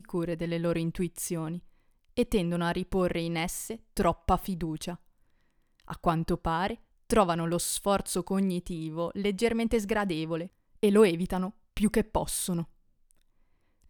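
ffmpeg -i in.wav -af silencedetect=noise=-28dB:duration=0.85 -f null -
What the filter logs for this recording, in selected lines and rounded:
silence_start: 4.92
silence_end: 5.90 | silence_duration: 0.99
silence_start: 12.62
silence_end: 13.89 | silence_duration: 1.27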